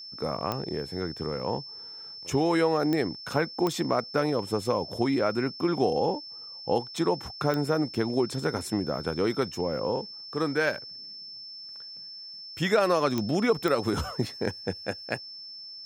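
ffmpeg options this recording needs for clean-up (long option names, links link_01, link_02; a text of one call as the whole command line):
ffmpeg -i in.wav -af "adeclick=threshold=4,bandreject=frequency=5300:width=30" out.wav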